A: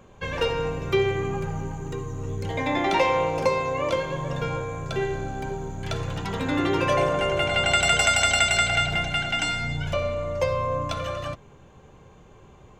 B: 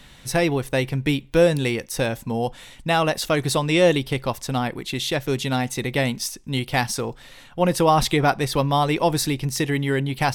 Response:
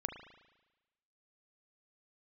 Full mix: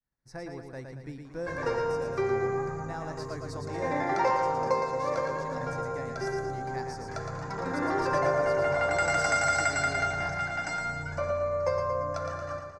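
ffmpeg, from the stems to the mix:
-filter_complex "[0:a]lowshelf=frequency=370:gain=-10,adelay=1250,volume=-2dB,asplit=2[link_01][link_02];[link_02]volume=-6dB[link_03];[1:a]adynamicequalizer=threshold=0.0178:dfrequency=2200:dqfactor=0.7:tfrequency=2200:tqfactor=0.7:attack=5:release=100:ratio=0.375:range=2.5:mode=boostabove:tftype=highshelf,volume=-20dB,asplit=2[link_04][link_05];[link_05]volume=-5dB[link_06];[link_03][link_06]amix=inputs=2:normalize=0,aecho=0:1:114|228|342|456|570|684|798:1|0.49|0.24|0.118|0.0576|0.0282|0.0138[link_07];[link_01][link_04][link_07]amix=inputs=3:normalize=0,agate=range=-33dB:threshold=-53dB:ratio=3:detection=peak,firequalizer=gain_entry='entry(1700,0);entry(3100,-25);entry(4800,-2);entry(15000,-28)':delay=0.05:min_phase=1"

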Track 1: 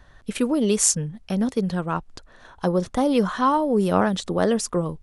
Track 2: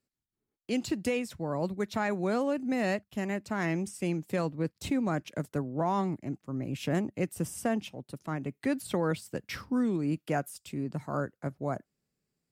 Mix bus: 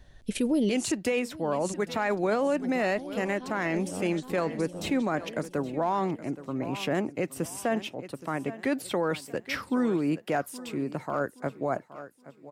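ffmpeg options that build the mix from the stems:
ffmpeg -i stem1.wav -i stem2.wav -filter_complex "[0:a]equalizer=frequency=1200:width_type=o:width=0.9:gain=-14,volume=-1.5dB,asplit=3[link_01][link_02][link_03];[link_01]atrim=end=0.92,asetpts=PTS-STARTPTS,afade=type=out:start_time=0.916:duration=0.004:curve=hsin[link_04];[link_02]atrim=start=0.92:end=1.67,asetpts=PTS-STARTPTS,volume=0[link_05];[link_03]atrim=start=1.67,asetpts=PTS-STARTPTS,afade=type=in:duration=0.004:curve=hsin[link_06];[link_04][link_05][link_06]concat=n=3:v=0:a=1,asplit=2[link_07][link_08];[link_08]volume=-20dB[link_09];[1:a]bass=frequency=250:gain=-11,treble=frequency=4000:gain=-6,acontrast=57,volume=1.5dB,asplit=3[link_10][link_11][link_12];[link_11]volume=-17.5dB[link_13];[link_12]apad=whole_len=221595[link_14];[link_07][link_14]sidechaincompress=threshold=-42dB:ratio=4:attack=24:release=647[link_15];[link_09][link_13]amix=inputs=2:normalize=0,aecho=0:1:821|1642|2463|3284|4105:1|0.33|0.109|0.0359|0.0119[link_16];[link_15][link_10][link_16]amix=inputs=3:normalize=0,volume=13.5dB,asoftclip=hard,volume=-13.5dB,alimiter=limit=-18.5dB:level=0:latency=1:release=17" out.wav

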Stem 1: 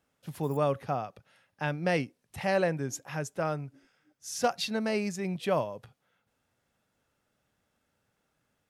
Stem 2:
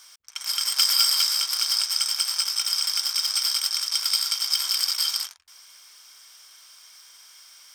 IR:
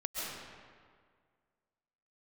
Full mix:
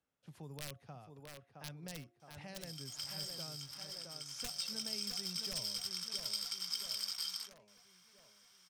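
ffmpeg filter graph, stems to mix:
-filter_complex "[0:a]lowpass=8900,bandreject=frequency=352.1:width_type=h:width=4,bandreject=frequency=704.2:width_type=h:width=4,aeval=exprs='(mod(7.94*val(0)+1,2)-1)/7.94':channel_layout=same,volume=-13dB,asplit=2[link_01][link_02];[link_02]volume=-9.5dB[link_03];[1:a]highshelf=frequency=6700:gain=-7.5,adelay=2200,volume=-12.5dB,afade=type=in:start_time=4.35:duration=0.24:silence=0.398107[link_04];[link_03]aecho=0:1:666|1332|1998|2664|3330|3996|4662:1|0.47|0.221|0.104|0.0488|0.0229|0.0108[link_05];[link_01][link_04][link_05]amix=inputs=3:normalize=0,acrossover=split=170|3000[link_06][link_07][link_08];[link_07]acompressor=threshold=-53dB:ratio=4[link_09];[link_06][link_09][link_08]amix=inputs=3:normalize=0"

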